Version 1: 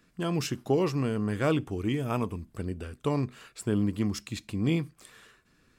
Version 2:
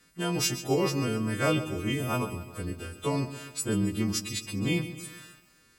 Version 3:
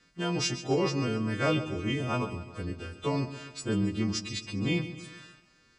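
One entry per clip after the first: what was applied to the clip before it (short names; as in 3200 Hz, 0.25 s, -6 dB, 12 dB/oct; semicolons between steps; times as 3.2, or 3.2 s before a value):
frequency quantiser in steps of 2 st; lo-fi delay 0.135 s, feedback 55%, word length 9-bit, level -12.5 dB
LPF 6400 Hz 24 dB/oct; in parallel at -8.5 dB: overloaded stage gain 20.5 dB; on the sum: gain -3.5 dB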